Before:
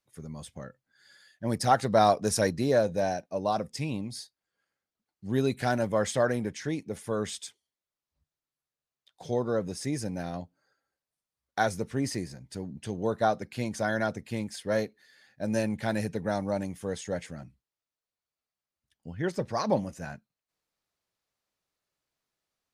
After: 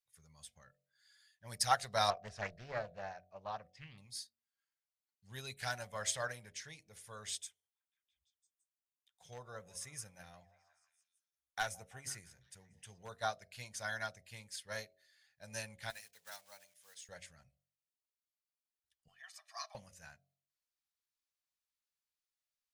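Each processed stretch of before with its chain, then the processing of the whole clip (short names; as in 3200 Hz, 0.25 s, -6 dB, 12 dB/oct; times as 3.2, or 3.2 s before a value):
2.1–3.98 LPF 2200 Hz + Doppler distortion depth 0.45 ms
7.4–13.09 bell 4500 Hz -10 dB 0.42 oct + overloaded stage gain 18 dB + delay with a stepping band-pass 0.167 s, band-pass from 560 Hz, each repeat 0.7 oct, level -12 dB
15.9–17.09 block floating point 5-bit + HPF 1400 Hz 6 dB/oct + upward expander, over -48 dBFS
19.08–19.75 compressor 3:1, threshold -32 dBFS + brick-wall FIR high-pass 620 Hz + comb 1.7 ms, depth 80%
whole clip: passive tone stack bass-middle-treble 10-0-10; de-hum 46.03 Hz, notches 16; upward expander 1.5:1, over -50 dBFS; gain +3.5 dB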